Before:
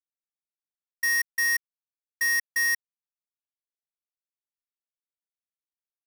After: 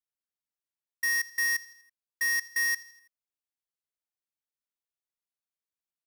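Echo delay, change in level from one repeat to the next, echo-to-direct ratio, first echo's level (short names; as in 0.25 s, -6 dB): 82 ms, -5.5 dB, -17.5 dB, -19.0 dB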